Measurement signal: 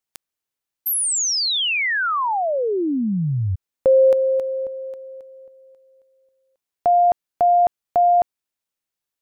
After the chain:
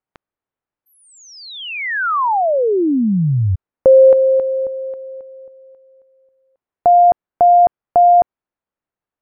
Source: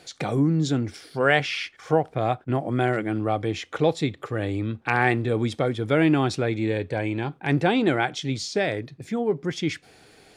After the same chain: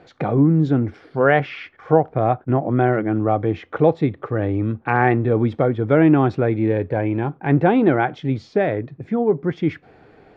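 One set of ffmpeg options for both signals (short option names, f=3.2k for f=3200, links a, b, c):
-af "lowpass=1.4k,volume=6dB"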